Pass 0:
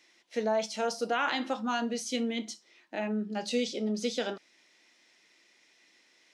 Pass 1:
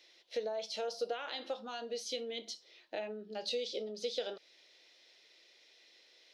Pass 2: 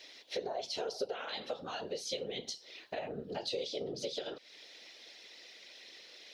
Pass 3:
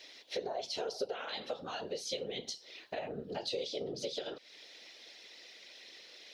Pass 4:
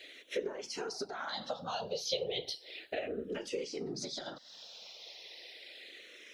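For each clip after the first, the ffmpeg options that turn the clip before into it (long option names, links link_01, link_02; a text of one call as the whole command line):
ffmpeg -i in.wav -af "equalizer=frequency=520:width=1.5:gain=-2.5,acompressor=threshold=-37dB:ratio=6,equalizer=frequency=125:width_type=o:width=1:gain=-10,equalizer=frequency=250:width_type=o:width=1:gain=-11,equalizer=frequency=500:width_type=o:width=1:gain=11,equalizer=frequency=1000:width_type=o:width=1:gain=-6,equalizer=frequency=2000:width_type=o:width=1:gain=-4,equalizer=frequency=4000:width_type=o:width=1:gain=9,equalizer=frequency=8000:width_type=o:width=1:gain=-10" out.wav
ffmpeg -i in.wav -af "acompressor=threshold=-50dB:ratio=2.5,afftfilt=real='hypot(re,im)*cos(2*PI*random(0))':imag='hypot(re,im)*sin(2*PI*random(1))':win_size=512:overlap=0.75,volume=15.5dB" out.wav
ffmpeg -i in.wav -af anull out.wav
ffmpeg -i in.wav -filter_complex "[0:a]asplit=2[link_01][link_02];[link_02]afreqshift=-0.34[link_03];[link_01][link_03]amix=inputs=2:normalize=1,volume=5dB" out.wav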